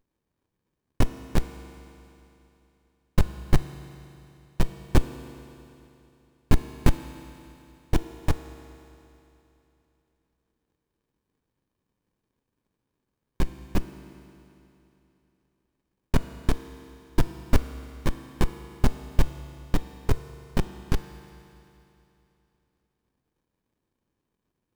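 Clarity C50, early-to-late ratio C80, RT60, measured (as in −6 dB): 10.5 dB, 11.5 dB, 3.0 s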